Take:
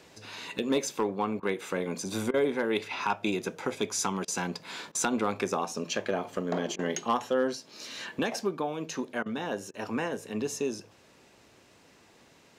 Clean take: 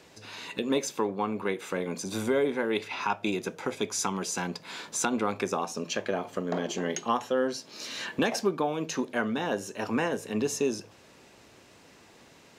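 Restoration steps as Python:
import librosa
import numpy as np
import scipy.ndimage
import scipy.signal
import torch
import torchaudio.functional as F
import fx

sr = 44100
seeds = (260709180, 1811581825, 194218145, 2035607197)

y = fx.fix_declip(x, sr, threshold_db=-18.0)
y = fx.fix_interpolate(y, sr, at_s=(1.4, 2.31, 4.25, 4.92, 6.76, 9.23, 9.71), length_ms=28.0)
y = fx.fix_level(y, sr, at_s=7.55, step_db=3.5)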